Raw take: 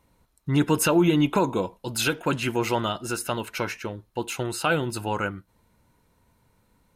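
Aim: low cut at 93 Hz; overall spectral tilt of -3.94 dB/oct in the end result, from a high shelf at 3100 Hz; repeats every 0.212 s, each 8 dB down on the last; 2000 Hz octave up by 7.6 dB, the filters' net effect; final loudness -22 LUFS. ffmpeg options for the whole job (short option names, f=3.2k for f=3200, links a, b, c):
-af "highpass=93,equalizer=f=2k:t=o:g=8.5,highshelf=f=3.1k:g=7,aecho=1:1:212|424|636|848|1060:0.398|0.159|0.0637|0.0255|0.0102,volume=-0.5dB"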